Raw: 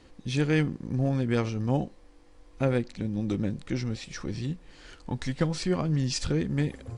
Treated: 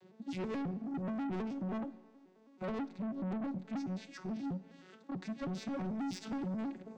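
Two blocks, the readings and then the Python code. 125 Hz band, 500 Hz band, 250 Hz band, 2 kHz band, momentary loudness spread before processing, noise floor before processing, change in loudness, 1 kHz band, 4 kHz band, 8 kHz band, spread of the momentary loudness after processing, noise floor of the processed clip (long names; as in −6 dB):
−16.5 dB, −12.0 dB, −7.5 dB, −14.0 dB, 10 LU, −55 dBFS, −10.5 dB, −5.5 dB, −15.5 dB, below −15 dB, 7 LU, −62 dBFS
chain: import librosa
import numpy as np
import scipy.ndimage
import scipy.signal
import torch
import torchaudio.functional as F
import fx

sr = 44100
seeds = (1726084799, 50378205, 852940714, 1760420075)

y = fx.vocoder_arp(x, sr, chord='minor triad', root=54, every_ms=107)
y = 10.0 ** (-33.5 / 20.0) * np.tanh(y / 10.0 ** (-33.5 / 20.0))
y = fx.rev_schroeder(y, sr, rt60_s=1.2, comb_ms=31, drr_db=16.5)
y = y * 10.0 ** (-1.5 / 20.0)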